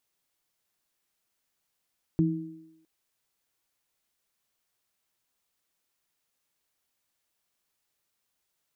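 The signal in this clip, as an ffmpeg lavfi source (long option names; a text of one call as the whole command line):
ffmpeg -f lavfi -i "aevalsrc='0.1*pow(10,-3*t/0.7)*sin(2*PI*166*t)+0.0841*pow(10,-3*t/0.95)*sin(2*PI*320*t)':duration=0.66:sample_rate=44100" out.wav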